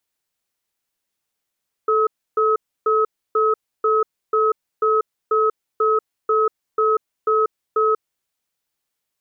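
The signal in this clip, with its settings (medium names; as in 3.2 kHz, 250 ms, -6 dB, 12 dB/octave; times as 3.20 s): cadence 437 Hz, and 1.28 kHz, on 0.19 s, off 0.30 s, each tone -17 dBFS 6.32 s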